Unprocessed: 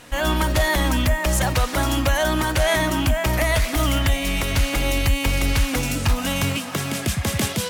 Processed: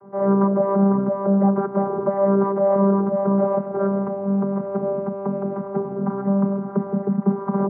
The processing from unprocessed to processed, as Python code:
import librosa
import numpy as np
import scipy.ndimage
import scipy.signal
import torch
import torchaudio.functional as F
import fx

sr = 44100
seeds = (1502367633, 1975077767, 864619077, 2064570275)

y = fx.tape_stop_end(x, sr, length_s=0.51)
y = scipy.signal.sosfilt(scipy.signal.ellip(4, 1.0, 70, 1100.0, 'lowpass', fs=sr, output='sos'), y)
y = fx.vocoder(y, sr, bands=16, carrier='saw', carrier_hz=197.0)
y = F.gain(torch.from_numpy(y), 6.0).numpy()